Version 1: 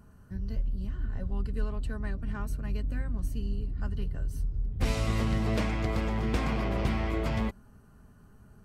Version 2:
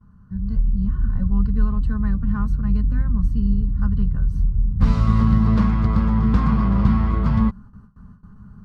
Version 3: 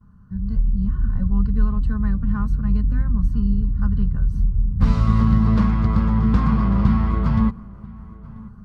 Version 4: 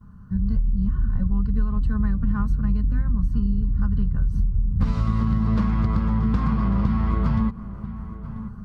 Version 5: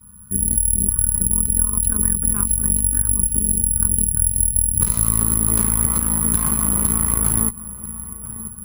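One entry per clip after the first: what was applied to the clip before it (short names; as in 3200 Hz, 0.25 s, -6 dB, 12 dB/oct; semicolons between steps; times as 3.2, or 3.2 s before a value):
gate with hold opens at -46 dBFS; EQ curve 130 Hz 0 dB, 200 Hz +5 dB, 320 Hz -13 dB, 480 Hz -12 dB, 680 Hz -16 dB, 1100 Hz 0 dB, 2400 Hz -18 dB, 4400 Hz -13 dB, 9400 Hz -26 dB; AGC gain up to 7.5 dB; gain +4.5 dB
darkening echo 0.987 s, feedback 28%, low-pass 1800 Hz, level -21 dB
compressor, threshold -22 dBFS, peak gain reduction 12 dB; gain +4.5 dB
high shelf 2100 Hz +11.5 dB; careless resampling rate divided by 4×, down none, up zero stuff; added harmonics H 6 -16 dB, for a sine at 4.5 dBFS; gain -4.5 dB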